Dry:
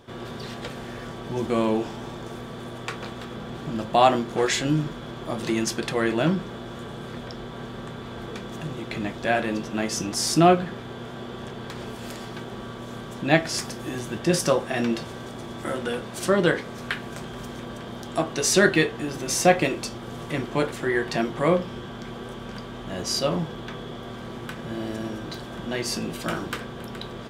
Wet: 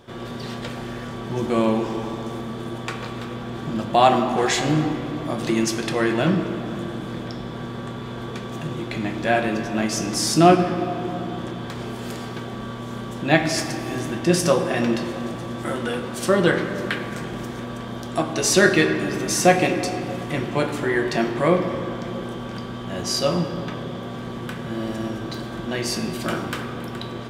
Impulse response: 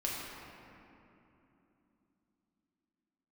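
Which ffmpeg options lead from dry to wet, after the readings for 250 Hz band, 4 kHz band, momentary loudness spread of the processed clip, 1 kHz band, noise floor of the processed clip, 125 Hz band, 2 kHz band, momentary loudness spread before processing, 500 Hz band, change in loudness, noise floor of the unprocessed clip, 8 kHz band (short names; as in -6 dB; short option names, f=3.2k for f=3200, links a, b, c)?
+4.0 dB, +2.5 dB, 15 LU, +3.5 dB, -33 dBFS, +4.0 dB, +3.0 dB, 17 LU, +3.0 dB, +3.0 dB, -38 dBFS, +2.0 dB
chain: -filter_complex "[0:a]asplit=2[a][b];[1:a]atrim=start_sample=2205[c];[b][c]afir=irnorm=-1:irlink=0,volume=-5.5dB[d];[a][d]amix=inputs=2:normalize=0,volume=-1.5dB"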